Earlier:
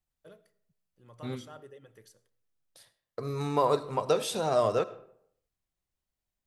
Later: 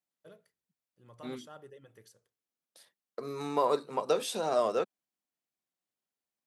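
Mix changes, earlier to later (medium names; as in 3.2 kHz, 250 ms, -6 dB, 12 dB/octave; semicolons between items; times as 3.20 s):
second voice: add high-pass 190 Hz 24 dB/octave; reverb: off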